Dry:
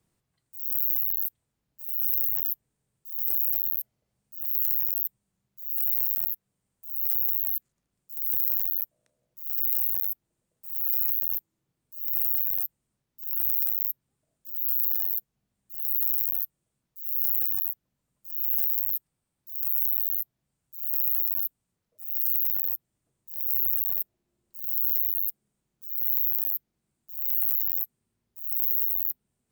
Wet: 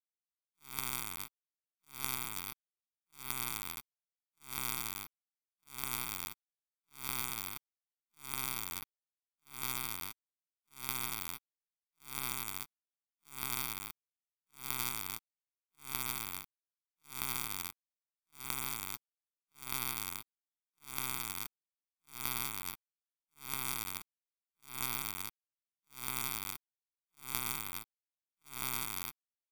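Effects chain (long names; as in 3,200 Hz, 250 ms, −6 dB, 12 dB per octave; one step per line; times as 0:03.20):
lower of the sound and its delayed copy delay 0.87 ms
power curve on the samples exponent 3
level −5 dB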